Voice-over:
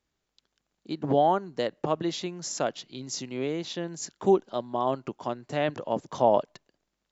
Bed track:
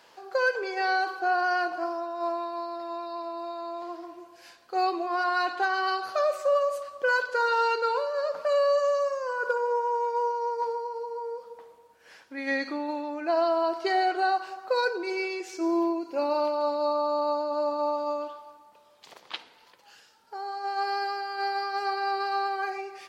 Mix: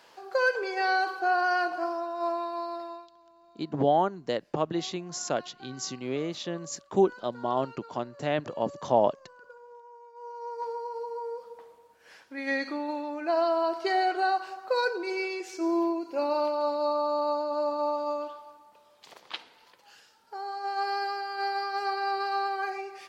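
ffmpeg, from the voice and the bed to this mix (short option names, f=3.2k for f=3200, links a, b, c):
-filter_complex "[0:a]adelay=2700,volume=-1dB[a];[1:a]volume=22dB,afade=t=out:st=2.75:d=0.34:silence=0.0707946,afade=t=in:st=10.15:d=0.84:silence=0.0794328[b];[a][b]amix=inputs=2:normalize=0"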